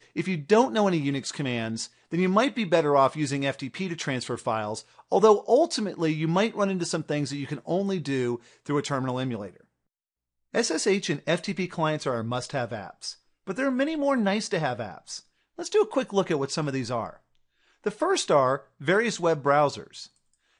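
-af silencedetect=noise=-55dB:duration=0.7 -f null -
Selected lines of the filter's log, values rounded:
silence_start: 9.64
silence_end: 10.53 | silence_duration: 0.89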